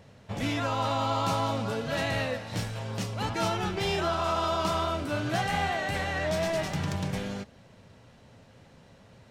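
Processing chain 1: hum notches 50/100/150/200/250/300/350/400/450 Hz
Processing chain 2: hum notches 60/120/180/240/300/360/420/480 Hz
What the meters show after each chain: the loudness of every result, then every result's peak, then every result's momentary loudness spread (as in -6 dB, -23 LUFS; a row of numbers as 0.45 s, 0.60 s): -30.0 LUFS, -30.0 LUFS; -16.0 dBFS, -16.5 dBFS; 7 LU, 7 LU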